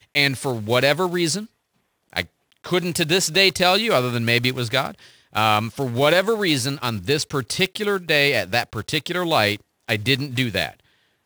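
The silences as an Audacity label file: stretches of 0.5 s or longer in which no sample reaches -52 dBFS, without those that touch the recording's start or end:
1.470000	2.100000	silence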